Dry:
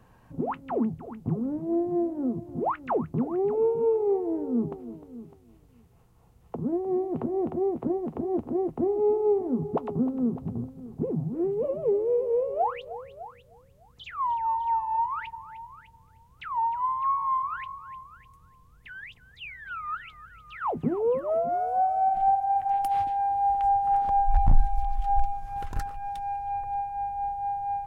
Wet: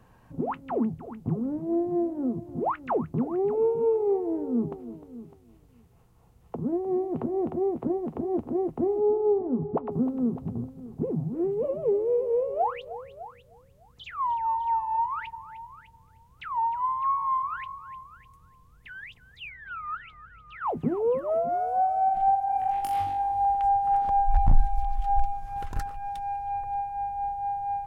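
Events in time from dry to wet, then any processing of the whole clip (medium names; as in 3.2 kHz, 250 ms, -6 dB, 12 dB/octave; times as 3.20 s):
8.99–9.90 s: low-pass 1.3 kHz -> 1.8 kHz
19.49–20.67 s: low-pass 2.5 kHz 6 dB/octave
22.46–23.45 s: flutter echo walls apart 3.6 m, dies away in 0.46 s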